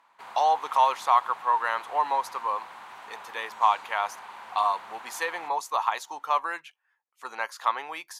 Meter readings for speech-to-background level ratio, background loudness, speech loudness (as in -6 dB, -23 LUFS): 16.5 dB, -43.5 LUFS, -27.0 LUFS